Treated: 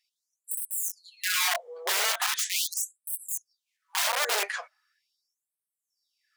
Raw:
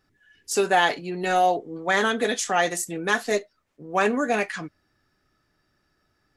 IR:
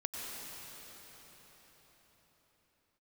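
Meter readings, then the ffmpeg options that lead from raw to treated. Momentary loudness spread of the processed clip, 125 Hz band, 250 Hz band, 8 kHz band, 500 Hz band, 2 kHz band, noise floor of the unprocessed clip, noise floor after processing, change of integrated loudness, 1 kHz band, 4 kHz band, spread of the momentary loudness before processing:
9 LU, below −40 dB, below −30 dB, +3.0 dB, −15.5 dB, −6.0 dB, −71 dBFS, below −85 dBFS, −4.0 dB, −11.0 dB, +2.5 dB, 8 LU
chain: -af "aeval=exprs='(mod(10.6*val(0)+1,2)-1)/10.6':channel_layout=same,afftfilt=real='re*gte(b*sr/1024,360*pow(8000/360,0.5+0.5*sin(2*PI*0.4*pts/sr)))':imag='im*gte(b*sr/1024,360*pow(8000/360,0.5+0.5*sin(2*PI*0.4*pts/sr)))':win_size=1024:overlap=0.75"

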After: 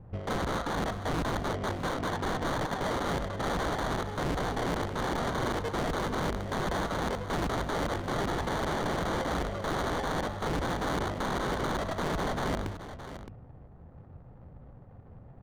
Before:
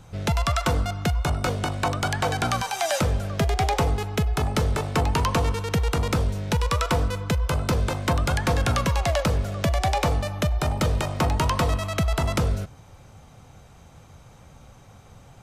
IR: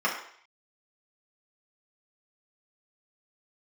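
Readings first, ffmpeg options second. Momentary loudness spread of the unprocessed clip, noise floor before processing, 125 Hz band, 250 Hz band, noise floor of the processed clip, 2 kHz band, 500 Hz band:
3 LU, −49 dBFS, −11.5 dB, −4.5 dB, −51 dBFS, −4.5 dB, −4.5 dB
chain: -filter_complex "[0:a]lowpass=frequency=6100:width=0.5412,lowpass=frequency=6100:width=1.3066,bandreject=frequency=50:width_type=h:width=6,bandreject=frequency=100:width_type=h:width=6,bandreject=frequency=150:width_type=h:width=6,bandreject=frequency=200:width_type=h:width=6,bandreject=frequency=250:width_type=h:width=6,bandreject=frequency=300:width_type=h:width=6,acrossover=split=3300[link_01][link_02];[link_02]alimiter=level_in=2dB:limit=-24dB:level=0:latency=1,volume=-2dB[link_03];[link_01][link_03]amix=inputs=2:normalize=0,acrusher=samples=17:mix=1:aa=0.000001,aeval=exprs='(mod(17.8*val(0)+1,2)-1)/17.8':channel_layout=same,adynamicsmooth=sensitivity=5:basefreq=590,asplit=2[link_04][link_05];[link_05]aecho=0:1:617:0.251[link_06];[link_04][link_06]amix=inputs=2:normalize=0"

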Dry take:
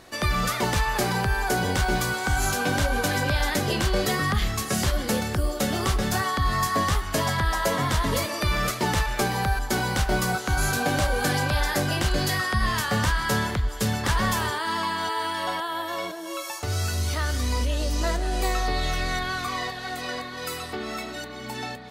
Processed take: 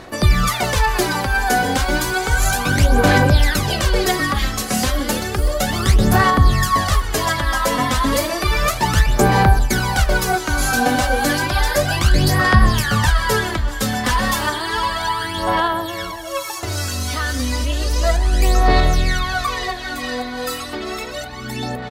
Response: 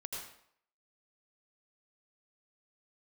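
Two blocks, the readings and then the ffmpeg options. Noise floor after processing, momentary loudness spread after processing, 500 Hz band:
−29 dBFS, 11 LU, +7.0 dB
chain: -filter_complex "[0:a]asplit=2[link_01][link_02];[link_02]adelay=640,lowpass=frequency=4700:poles=1,volume=-16dB,asplit=2[link_03][link_04];[link_04]adelay=640,lowpass=frequency=4700:poles=1,volume=0.51,asplit=2[link_05][link_06];[link_06]adelay=640,lowpass=frequency=4700:poles=1,volume=0.51,asplit=2[link_07][link_08];[link_08]adelay=640,lowpass=frequency=4700:poles=1,volume=0.51,asplit=2[link_09][link_10];[link_10]adelay=640,lowpass=frequency=4700:poles=1,volume=0.51[link_11];[link_01][link_03][link_05][link_07][link_09][link_11]amix=inputs=6:normalize=0,aphaser=in_gain=1:out_gain=1:delay=4:decay=0.64:speed=0.32:type=sinusoidal,volume=4dB"

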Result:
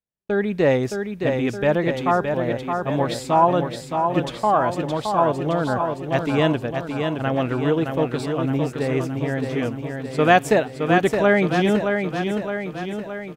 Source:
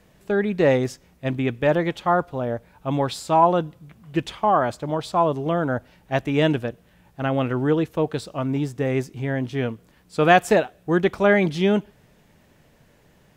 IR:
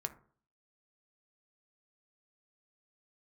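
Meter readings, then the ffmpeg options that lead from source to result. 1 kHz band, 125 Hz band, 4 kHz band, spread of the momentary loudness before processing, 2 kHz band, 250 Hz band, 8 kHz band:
+1.5 dB, +1.0 dB, +1.5 dB, 11 LU, +1.5 dB, +1.5 dB, +1.5 dB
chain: -af "aecho=1:1:618|1236|1854|2472|3090|3708|4326|4944:0.531|0.308|0.179|0.104|0.0601|0.0348|0.0202|0.0117,agate=range=-41dB:threshold=-45dB:ratio=16:detection=peak"

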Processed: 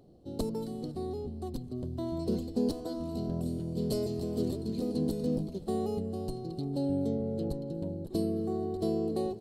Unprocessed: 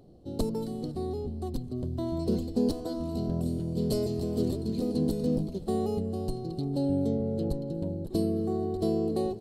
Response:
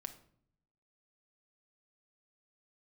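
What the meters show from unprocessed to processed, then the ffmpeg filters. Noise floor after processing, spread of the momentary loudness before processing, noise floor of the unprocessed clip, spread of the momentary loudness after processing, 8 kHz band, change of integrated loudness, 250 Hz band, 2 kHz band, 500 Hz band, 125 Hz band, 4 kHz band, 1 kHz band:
−44 dBFS, 6 LU, −40 dBFS, 6 LU, −2.5 dB, −3.0 dB, −3.0 dB, can't be measured, −2.5 dB, −4.0 dB, −2.5 dB, −2.5 dB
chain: -af "lowshelf=frequency=83:gain=-5,volume=-2.5dB"

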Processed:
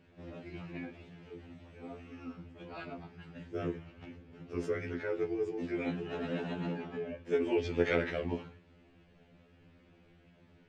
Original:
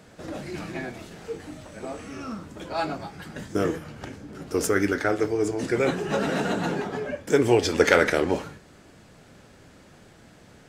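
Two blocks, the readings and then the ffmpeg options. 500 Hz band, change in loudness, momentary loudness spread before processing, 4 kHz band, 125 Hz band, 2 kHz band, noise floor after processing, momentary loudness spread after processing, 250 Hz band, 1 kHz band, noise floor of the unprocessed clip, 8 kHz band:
−10.5 dB, −11.0 dB, 18 LU, −15.0 dB, −9.0 dB, −14.0 dB, −63 dBFS, 19 LU, −10.0 dB, −16.0 dB, −52 dBFS, below −25 dB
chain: -af "lowpass=frequency=2600:width_type=q:width=2.6,equalizer=frequency=1700:width=0.48:gain=-10,afftfilt=real='re*2*eq(mod(b,4),0)':imag='im*2*eq(mod(b,4),0)':win_size=2048:overlap=0.75,volume=-6.5dB"

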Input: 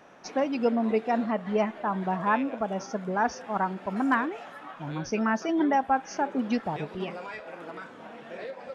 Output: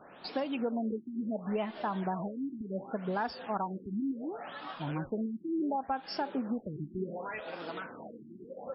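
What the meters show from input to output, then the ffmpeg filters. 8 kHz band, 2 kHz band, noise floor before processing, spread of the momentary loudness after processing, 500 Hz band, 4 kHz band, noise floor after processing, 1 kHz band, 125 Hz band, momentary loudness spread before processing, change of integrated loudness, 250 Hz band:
can't be measured, −11.0 dB, −47 dBFS, 8 LU, −7.5 dB, −2.0 dB, −53 dBFS, −9.0 dB, −3.0 dB, 15 LU, −8.0 dB, −6.0 dB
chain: -af "aexciter=amount=4:drive=4.9:freq=3100,acompressor=threshold=-30dB:ratio=5,afftfilt=real='re*lt(b*sr/1024,360*pow(5600/360,0.5+0.5*sin(2*PI*0.69*pts/sr)))':imag='im*lt(b*sr/1024,360*pow(5600/360,0.5+0.5*sin(2*PI*0.69*pts/sr)))':win_size=1024:overlap=0.75"

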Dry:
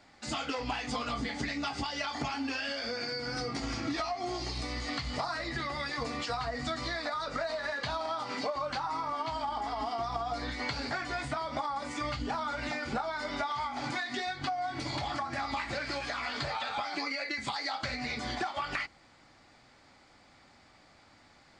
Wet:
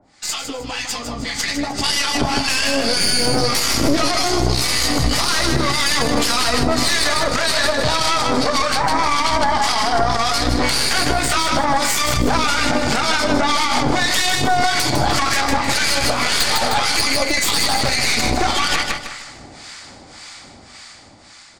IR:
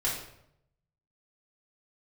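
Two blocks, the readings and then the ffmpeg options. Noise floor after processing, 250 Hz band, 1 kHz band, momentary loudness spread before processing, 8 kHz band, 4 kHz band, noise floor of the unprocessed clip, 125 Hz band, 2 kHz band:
−42 dBFS, +16.0 dB, +14.5 dB, 1 LU, +27.0 dB, +20.0 dB, −60 dBFS, +17.0 dB, +16.0 dB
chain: -filter_complex "[0:a]asplit=2[link_01][link_02];[link_02]adelay=358,lowpass=frequency=850:poles=1,volume=-18.5dB,asplit=2[link_03][link_04];[link_04]adelay=358,lowpass=frequency=850:poles=1,volume=0.41,asplit=2[link_05][link_06];[link_06]adelay=358,lowpass=frequency=850:poles=1,volume=0.41[link_07];[link_03][link_05][link_07]amix=inputs=3:normalize=0[link_08];[link_01][link_08]amix=inputs=2:normalize=0,dynaudnorm=framelen=330:gausssize=13:maxgain=15dB,highshelf=frequency=5200:gain=7.5,aresample=22050,aresample=44100,acrossover=split=900[link_09][link_10];[link_09]aeval=exprs='val(0)*(1-1/2+1/2*cos(2*PI*1.8*n/s))':channel_layout=same[link_11];[link_10]aeval=exprs='val(0)*(1-1/2-1/2*cos(2*PI*1.8*n/s))':channel_layout=same[link_12];[link_11][link_12]amix=inputs=2:normalize=0,aemphasis=mode=production:type=cd,aeval=exprs='0.473*(cos(1*acos(clip(val(0)/0.473,-1,1)))-cos(1*PI/2))+0.188*(cos(4*acos(clip(val(0)/0.473,-1,1)))-cos(4*PI/2))':channel_layout=same,asplit=2[link_13][link_14];[link_14]aecho=0:1:154|308|462|616:0.376|0.117|0.0361|0.0112[link_15];[link_13][link_15]amix=inputs=2:normalize=0,alimiter=level_in=12.5dB:limit=-1dB:release=50:level=0:latency=1,volume=-4dB"

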